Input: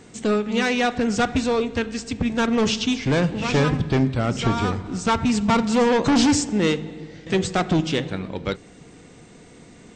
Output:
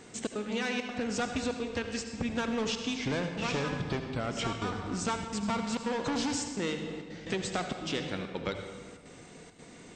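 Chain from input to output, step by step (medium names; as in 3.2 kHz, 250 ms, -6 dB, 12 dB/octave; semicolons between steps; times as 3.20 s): bass shelf 240 Hz -7.5 dB; compression, threshold -28 dBFS, peak gain reduction 11 dB; trance gate "xxx.xxxxx.xxxx" 169 bpm -60 dB; on a send: reverberation RT60 1.5 s, pre-delay 66 ms, DRR 6 dB; on the sum: trim -2 dB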